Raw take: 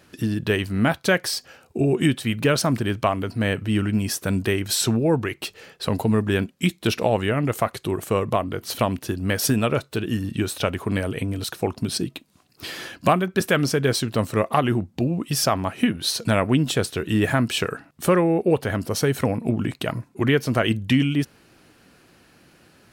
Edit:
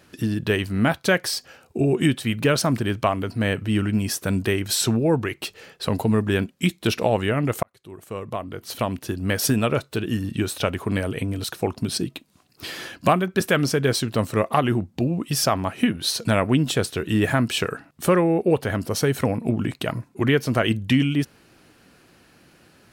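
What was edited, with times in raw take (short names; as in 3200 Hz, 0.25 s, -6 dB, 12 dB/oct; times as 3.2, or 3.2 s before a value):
7.63–9.33 fade in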